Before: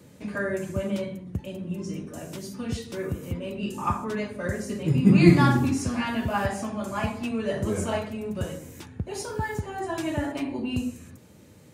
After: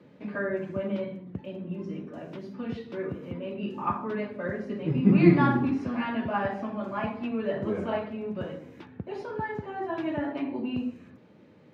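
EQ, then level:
high-pass filter 180 Hz 12 dB per octave
dynamic equaliser 8,000 Hz, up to −6 dB, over −50 dBFS, Q 0.73
high-frequency loss of the air 320 metres
0.0 dB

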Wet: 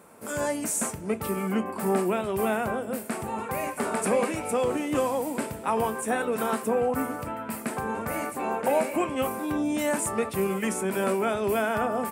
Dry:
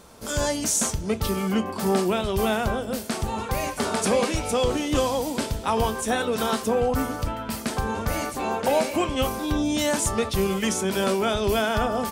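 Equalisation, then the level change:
high-pass filter 160 Hz 12 dB per octave
flat-topped bell 4,500 Hz −12 dB 1.3 octaves
−2.0 dB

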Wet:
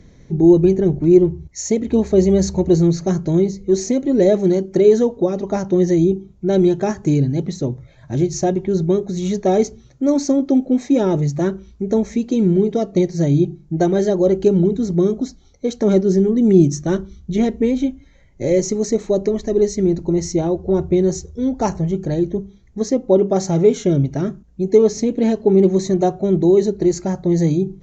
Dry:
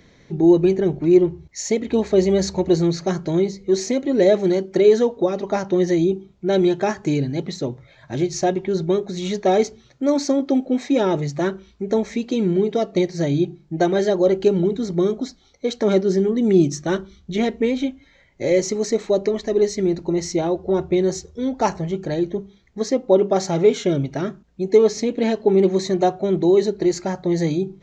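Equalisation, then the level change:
spectral tilt −2.5 dB per octave
low-shelf EQ 360 Hz +3.5 dB
parametric band 6,600 Hz +13 dB 0.79 octaves
−3.0 dB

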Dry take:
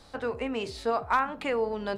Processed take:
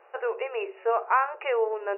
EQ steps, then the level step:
linear-phase brick-wall band-pass 350–2,900 Hz
parametric band 2,000 Hz −2 dB
+3.0 dB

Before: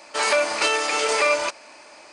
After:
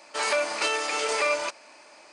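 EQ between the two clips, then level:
high-pass filter 100 Hz 6 dB per octave
−5.0 dB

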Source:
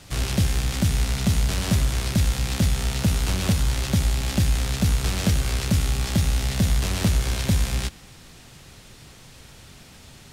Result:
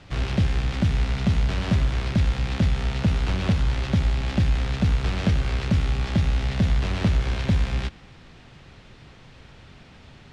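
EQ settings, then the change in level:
low-pass filter 3,100 Hz 12 dB per octave
0.0 dB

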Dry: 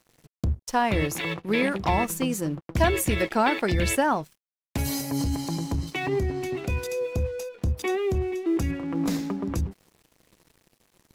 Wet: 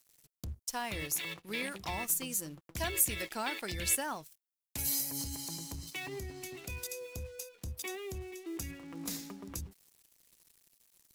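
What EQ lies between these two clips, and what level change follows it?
first-order pre-emphasis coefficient 0.97
low-shelf EQ 77 Hz +5.5 dB
low-shelf EQ 490 Hz +11.5 dB
0.0 dB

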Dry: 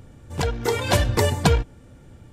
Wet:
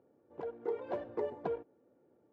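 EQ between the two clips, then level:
four-pole ladder band-pass 490 Hz, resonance 35%
−3.5 dB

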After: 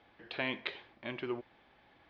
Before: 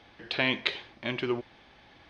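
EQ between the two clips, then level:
low-pass filter 2,700 Hz 6 dB per octave
high-frequency loss of the air 92 metres
low-shelf EQ 220 Hz −6 dB
−5.5 dB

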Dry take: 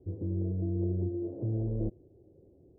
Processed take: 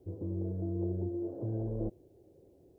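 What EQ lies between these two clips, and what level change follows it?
tilt shelving filter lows −8 dB, about 650 Hz
+3.0 dB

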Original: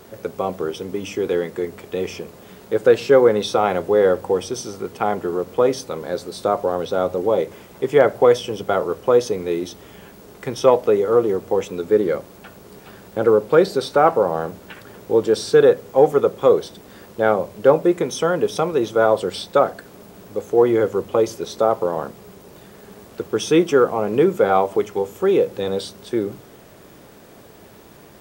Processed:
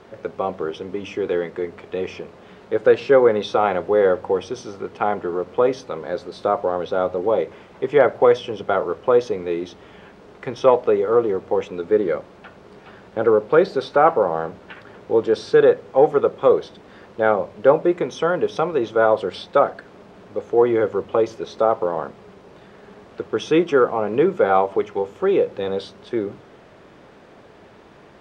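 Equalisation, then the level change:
Bessel low-pass filter 2,600 Hz, order 2
low-shelf EQ 450 Hz −6 dB
+2.0 dB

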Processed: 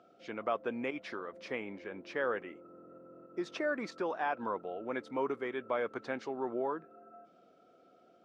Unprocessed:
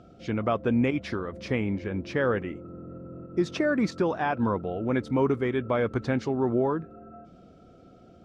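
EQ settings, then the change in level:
Bessel high-pass filter 560 Hz, order 2
high-shelf EQ 3,400 Hz −7.5 dB
−4.0 dB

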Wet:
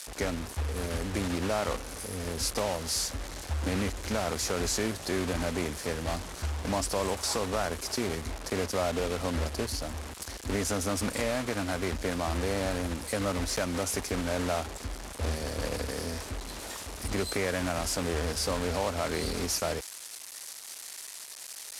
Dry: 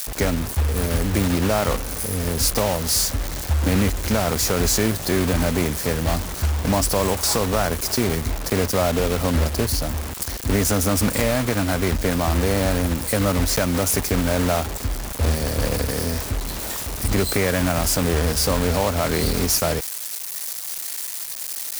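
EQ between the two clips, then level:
high-pass filter 50 Hz
Bessel low-pass filter 9,200 Hz, order 4
parametric band 130 Hz −7.5 dB 1.2 octaves
−8.0 dB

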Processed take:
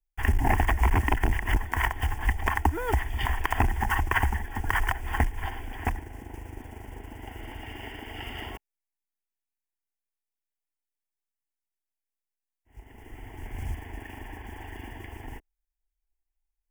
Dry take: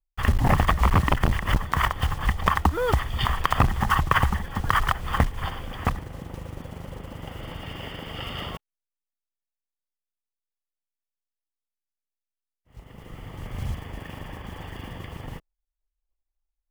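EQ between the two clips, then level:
phaser with its sweep stopped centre 810 Hz, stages 8
0.0 dB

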